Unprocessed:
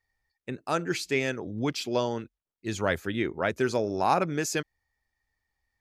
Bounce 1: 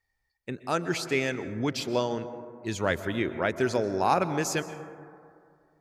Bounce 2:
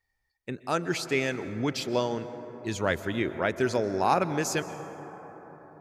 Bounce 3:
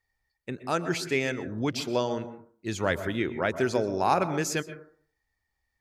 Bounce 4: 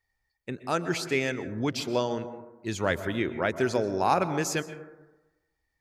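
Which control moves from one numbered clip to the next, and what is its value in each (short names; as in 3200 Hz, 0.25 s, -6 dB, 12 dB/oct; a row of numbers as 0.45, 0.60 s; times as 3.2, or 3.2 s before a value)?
plate-style reverb, RT60: 2.3, 5.1, 0.51, 1.1 s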